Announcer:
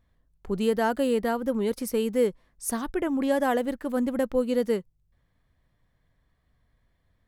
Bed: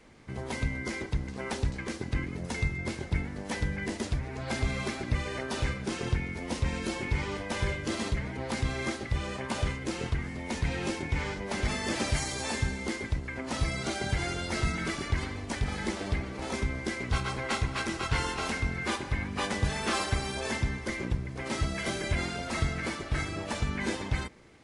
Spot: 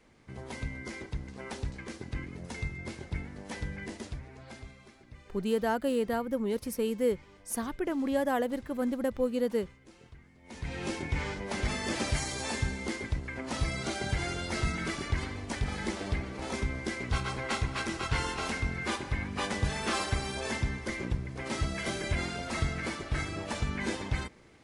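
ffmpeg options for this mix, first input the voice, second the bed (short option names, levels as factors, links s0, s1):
-filter_complex "[0:a]adelay=4850,volume=0.596[s0];[1:a]volume=5.31,afade=t=out:st=3.8:d=0.97:silence=0.158489,afade=t=in:st=10.42:d=0.53:silence=0.0944061[s1];[s0][s1]amix=inputs=2:normalize=0"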